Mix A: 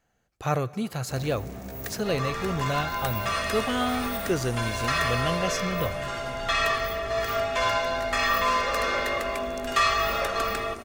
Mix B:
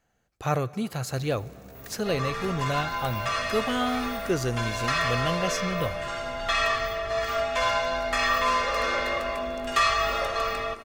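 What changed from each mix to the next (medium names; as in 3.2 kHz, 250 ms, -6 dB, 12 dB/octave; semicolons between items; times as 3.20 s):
first sound -9.0 dB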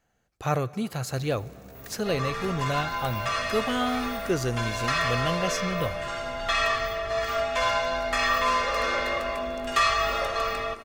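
no change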